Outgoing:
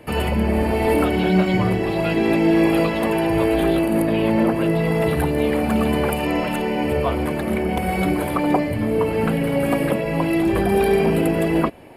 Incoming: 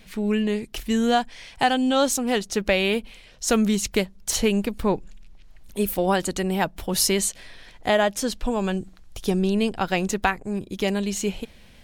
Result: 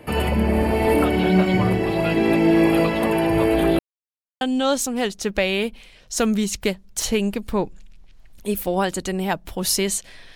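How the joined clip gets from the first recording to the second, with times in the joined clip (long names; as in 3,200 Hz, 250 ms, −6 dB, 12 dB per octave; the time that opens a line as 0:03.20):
outgoing
0:03.79–0:04.41: silence
0:04.41: continue with incoming from 0:01.72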